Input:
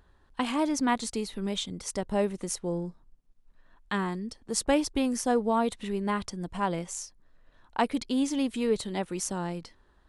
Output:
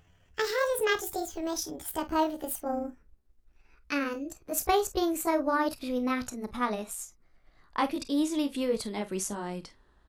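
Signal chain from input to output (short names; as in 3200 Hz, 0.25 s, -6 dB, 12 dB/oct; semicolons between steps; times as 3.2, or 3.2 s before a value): gliding pitch shift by +10 st ending unshifted; early reflections 32 ms -15.5 dB, 48 ms -15.5 dB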